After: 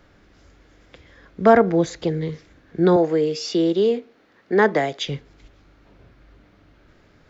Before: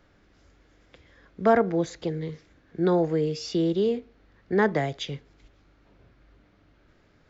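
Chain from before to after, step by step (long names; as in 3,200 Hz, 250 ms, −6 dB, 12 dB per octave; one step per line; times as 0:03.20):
0:02.96–0:05.07: high-pass filter 250 Hz 12 dB per octave
level +6.5 dB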